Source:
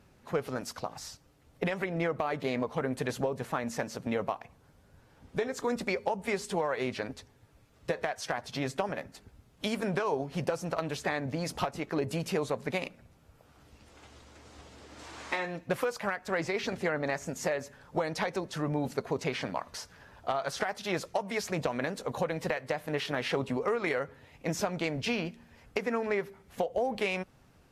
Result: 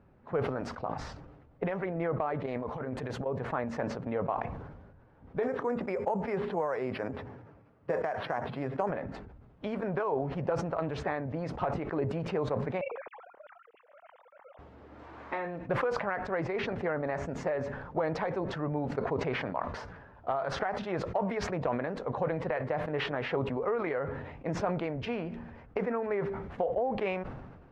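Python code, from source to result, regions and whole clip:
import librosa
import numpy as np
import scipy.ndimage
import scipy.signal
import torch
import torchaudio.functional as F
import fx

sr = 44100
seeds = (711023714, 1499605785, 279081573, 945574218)

y = fx.chain(x, sr, fx.high_shelf(hz=6100.0, db=12.0),
    fx.over_compress(threshold_db=-33.0, ratio=-0.5), at=(2.46, 3.26))
y = fx.chain(y, sr, fx.highpass(hz=110.0, slope=12),
    fx.resample_bad(factor=6, down='filtered', up='hold'), at=(5.43, 8.9))
y = fx.chain(y, sr, fx.sine_speech(),
    fx.transient(attack_db=9, sustain_db=-10), at=(12.81, 14.59))
y = scipy.signal.sosfilt(scipy.signal.butter(2, 1400.0, 'lowpass', fs=sr, output='sos'), y)
y = fx.dynamic_eq(y, sr, hz=220.0, q=1.4, threshold_db=-43.0, ratio=4.0, max_db=-4)
y = fx.sustainer(y, sr, db_per_s=43.0)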